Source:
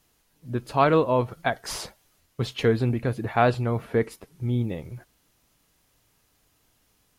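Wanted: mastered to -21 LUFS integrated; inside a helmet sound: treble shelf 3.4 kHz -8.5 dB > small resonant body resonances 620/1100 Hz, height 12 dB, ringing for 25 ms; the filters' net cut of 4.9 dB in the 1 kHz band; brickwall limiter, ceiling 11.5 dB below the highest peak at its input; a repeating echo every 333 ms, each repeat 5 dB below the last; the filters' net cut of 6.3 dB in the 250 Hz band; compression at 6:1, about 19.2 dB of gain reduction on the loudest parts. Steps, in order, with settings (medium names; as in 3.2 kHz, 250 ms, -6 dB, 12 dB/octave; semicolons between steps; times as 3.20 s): peaking EQ 250 Hz -8 dB; peaking EQ 1 kHz -5.5 dB; compression 6:1, threshold -40 dBFS; peak limiter -36.5 dBFS; treble shelf 3.4 kHz -8.5 dB; feedback delay 333 ms, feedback 56%, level -5 dB; small resonant body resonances 620/1100 Hz, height 12 dB, ringing for 25 ms; trim +22.5 dB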